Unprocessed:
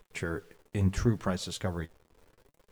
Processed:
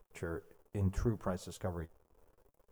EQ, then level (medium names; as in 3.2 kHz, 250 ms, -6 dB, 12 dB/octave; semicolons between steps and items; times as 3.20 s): ten-band graphic EQ 125 Hz -5 dB, 250 Hz -5 dB, 2 kHz -9 dB, 4 kHz -12 dB, 8 kHz -5 dB; -2.5 dB